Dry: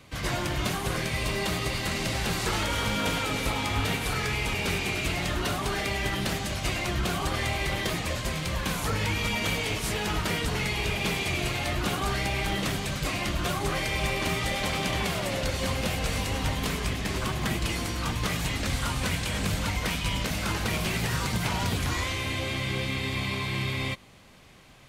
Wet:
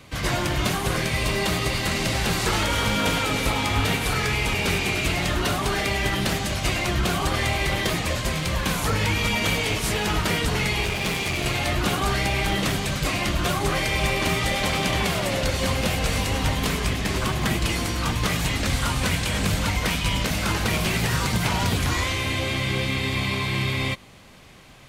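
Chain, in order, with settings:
0:10.85–0:11.46: asymmetric clip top −32.5 dBFS
level +5 dB

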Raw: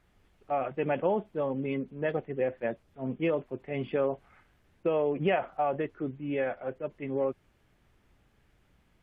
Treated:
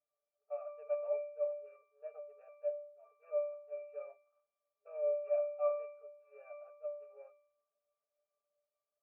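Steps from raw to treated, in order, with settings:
running median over 25 samples
brick-wall band-pass 410–2,800 Hz
resonances in every octave D, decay 0.64 s
one half of a high-frequency compander decoder only
level +10 dB

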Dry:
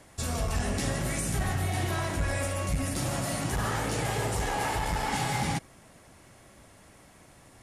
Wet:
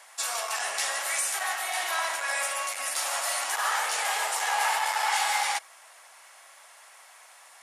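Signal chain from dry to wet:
high-pass filter 780 Hz 24 dB per octave
level +6.5 dB

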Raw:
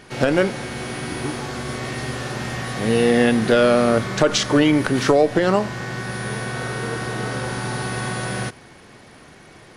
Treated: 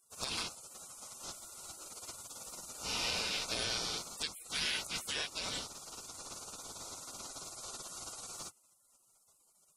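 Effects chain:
band-splitting scrambler in four parts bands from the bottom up 4123
gate on every frequency bin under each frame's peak −30 dB weak

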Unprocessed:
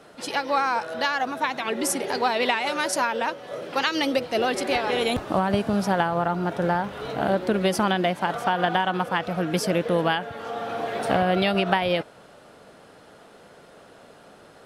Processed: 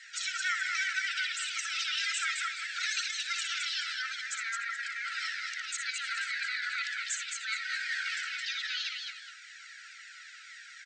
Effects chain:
compressor whose output falls as the input rises −25 dBFS, ratio −0.5
brickwall limiter −22 dBFS, peak gain reduction 11.5 dB
multi-tap delay 81/292/399/571 ms −6.5/−4/−17.5/−14.5 dB
wrong playback speed 33 rpm record played at 45 rpm
linear-phase brick-wall band-pass 1,300–8,600 Hz
flanger whose copies keep moving one way falling 1.9 Hz
level +6 dB

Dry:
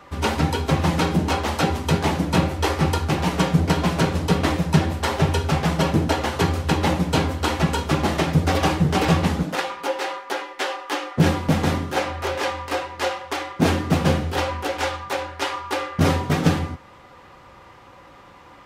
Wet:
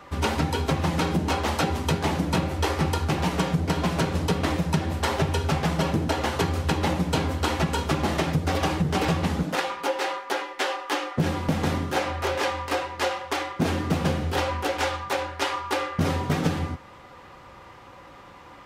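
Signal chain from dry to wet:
downward compressor, threshold −20 dBFS, peak gain reduction 9.5 dB

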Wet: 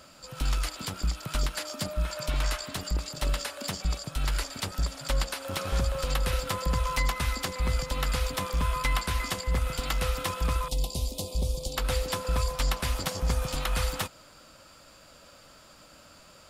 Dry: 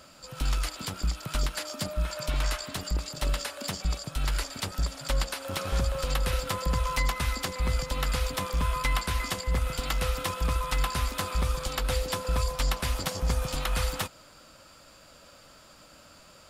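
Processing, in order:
0:10.68–0:11.77: Chebyshev band-stop filter 580–4,100 Hz, order 2

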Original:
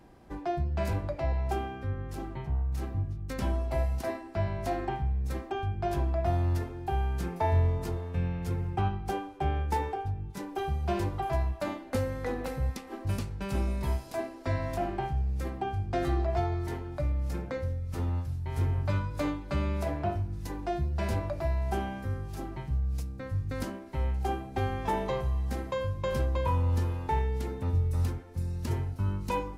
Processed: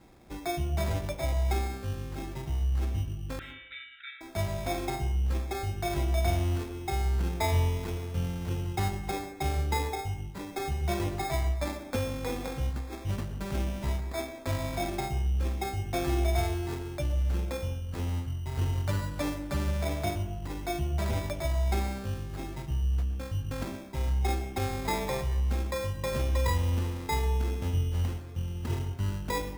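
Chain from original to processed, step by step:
decimation without filtering 15×
0:03.39–0:04.21: linear-phase brick-wall band-pass 1,300–3,900 Hz
dense smooth reverb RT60 0.75 s, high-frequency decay 0.3×, pre-delay 100 ms, DRR 11 dB
level −1 dB

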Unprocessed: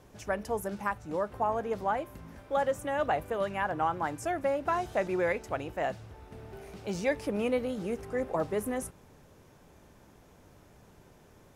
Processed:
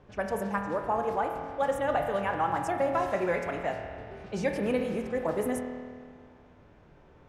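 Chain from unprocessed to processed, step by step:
spring reverb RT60 3.1 s, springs 40 ms, chirp 40 ms, DRR 3 dB
low-pass that shuts in the quiet parts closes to 2,700 Hz, open at −26.5 dBFS
phase-vocoder stretch with locked phases 0.63×
level +1 dB

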